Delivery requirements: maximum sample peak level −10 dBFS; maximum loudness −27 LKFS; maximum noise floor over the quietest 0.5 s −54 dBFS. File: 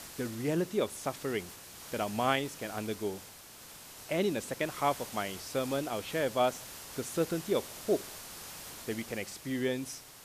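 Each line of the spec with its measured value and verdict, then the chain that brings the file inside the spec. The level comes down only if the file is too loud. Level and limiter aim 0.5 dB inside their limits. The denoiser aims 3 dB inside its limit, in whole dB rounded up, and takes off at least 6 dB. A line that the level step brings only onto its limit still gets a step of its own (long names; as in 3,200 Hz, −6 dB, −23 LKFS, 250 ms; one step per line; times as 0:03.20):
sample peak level −12.5 dBFS: in spec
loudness −34.0 LKFS: in spec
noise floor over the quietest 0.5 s −51 dBFS: out of spec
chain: broadband denoise 6 dB, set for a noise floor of −51 dBFS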